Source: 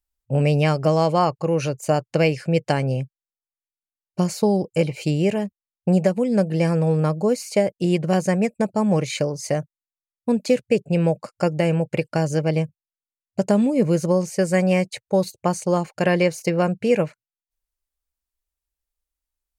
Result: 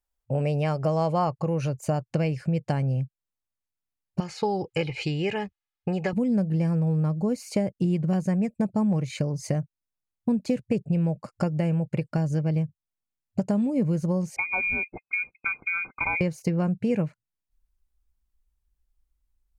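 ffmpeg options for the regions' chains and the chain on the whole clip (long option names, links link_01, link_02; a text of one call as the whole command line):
ffmpeg -i in.wav -filter_complex "[0:a]asettb=1/sr,asplit=3[link_01][link_02][link_03];[link_01]atrim=end=4.204[link_04];[link_02]atrim=start=4.2:end=6.13,asetpts=PTS-STARTPTS,afade=type=in:duration=0.004:curve=qsin,afade=type=out:start_time=1.926:duration=0.004:curve=qsin,lowpass=3300,tiltshelf=frequency=840:gain=-10,aecho=1:1:2.4:0.54,atrim=end_sample=85113[link_05];[link_03]atrim=start=6.126[link_06];[link_04][link_05]acrossfade=duration=0.004:curve1=hsin:curve2=qsin[link_07];[link_07][link_06]acrossfade=duration=0.004:curve1=qsin:curve2=hsin,asettb=1/sr,asplit=3[link_08][link_09][link_10];[link_08]atrim=end=14.364[link_11];[link_09]atrim=start=14.36:end=16.21,asetpts=PTS-STARTPTS,afade=type=in:duration=0.004:curve=qsin,afade=type=out:start_time=1.846:duration=0.004:curve=qsin,asuperstop=centerf=710:order=20:qfactor=1.4,lowpass=frequency=2200:width_type=q:width=0.5098,lowpass=frequency=2200:width_type=q:width=0.6013,lowpass=frequency=2200:width_type=q:width=0.9,lowpass=frequency=2200:width_type=q:width=2.563,afreqshift=-2600[link_12];[link_10]atrim=start=16.206[link_13];[link_11][link_12]acrossfade=duration=0.004:curve1=hsin:curve2=qsin[link_14];[link_14][link_13]acrossfade=duration=0.004:curve1=qsin:curve2=hsin,asubboost=boost=9.5:cutoff=180,acompressor=threshold=-25dB:ratio=3,equalizer=frequency=690:width=0.53:gain=8.5,volume=-3.5dB" out.wav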